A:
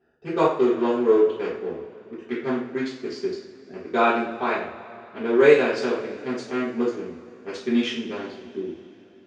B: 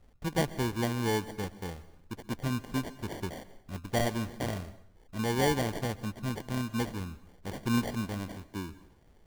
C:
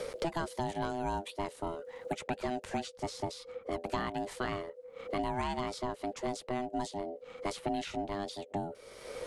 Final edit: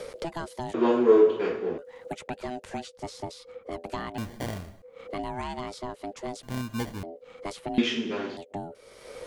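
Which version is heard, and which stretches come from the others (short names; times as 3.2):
C
0.74–1.78 from A
4.18–4.82 from B
6.43–7.03 from B
7.78–8.37 from A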